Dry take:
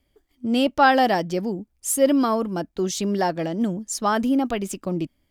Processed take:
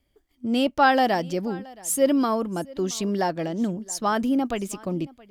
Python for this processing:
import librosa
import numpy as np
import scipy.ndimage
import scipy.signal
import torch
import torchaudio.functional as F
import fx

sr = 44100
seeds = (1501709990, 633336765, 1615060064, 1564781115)

y = x + 10.0 ** (-22.5 / 20.0) * np.pad(x, (int(673 * sr / 1000.0), 0))[:len(x)]
y = y * librosa.db_to_amplitude(-2.0)